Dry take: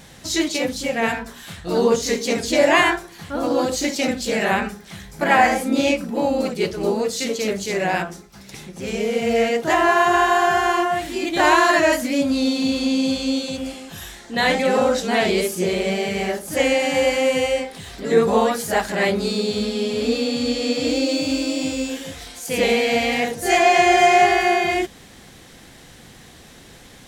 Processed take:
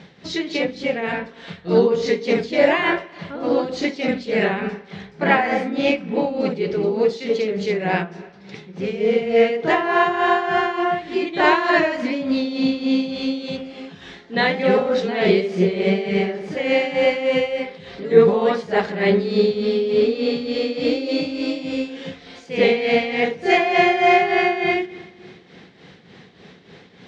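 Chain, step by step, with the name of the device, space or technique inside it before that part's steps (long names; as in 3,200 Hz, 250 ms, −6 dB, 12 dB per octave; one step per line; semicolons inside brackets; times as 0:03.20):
combo amplifier with spring reverb and tremolo (spring reverb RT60 1.8 s, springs 41/55 ms, chirp 60 ms, DRR 15.5 dB; amplitude tremolo 3.4 Hz, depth 64%; loudspeaker in its box 110–4,500 Hz, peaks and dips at 180 Hz +9 dB, 420 Hz +9 dB, 2,100 Hz +3 dB)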